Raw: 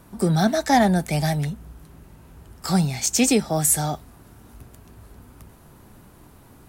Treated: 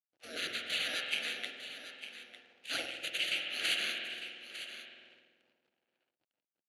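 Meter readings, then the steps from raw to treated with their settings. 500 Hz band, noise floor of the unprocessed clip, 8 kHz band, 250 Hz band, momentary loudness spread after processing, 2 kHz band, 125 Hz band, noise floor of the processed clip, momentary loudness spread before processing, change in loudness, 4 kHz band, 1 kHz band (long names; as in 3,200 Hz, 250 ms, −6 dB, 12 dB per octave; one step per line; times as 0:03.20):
−23.0 dB, −50 dBFS, −23.0 dB, −32.5 dB, 15 LU, −4.0 dB, below −40 dB, below −85 dBFS, 12 LU, −15.0 dB, −1.5 dB, −25.5 dB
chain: samples sorted by size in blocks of 8 samples
gate on every frequency bin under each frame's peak −25 dB weak
noise gate −39 dBFS, range −8 dB
downward compressor, threshold −28 dBFS, peak gain reduction 5.5 dB
phaser with its sweep stopped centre 2,300 Hz, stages 4
sample-and-hold tremolo
spring reverb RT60 3.3 s, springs 47 ms, chirp 70 ms, DRR 2.5 dB
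rotating-speaker cabinet horn 0.7 Hz, later 8 Hz, at 0:04.98
slack as between gear wheels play −59.5 dBFS
loudspeaker in its box 380–8,700 Hz, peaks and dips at 420 Hz −5 dB, 1,100 Hz −9 dB, 1,900 Hz −3 dB, 2,800 Hz +6 dB, 4,400 Hz +6 dB, 8,000 Hz −10 dB
on a send: single-tap delay 902 ms −12 dB
on the sum: one half of a high-frequency compander decoder only
level +8 dB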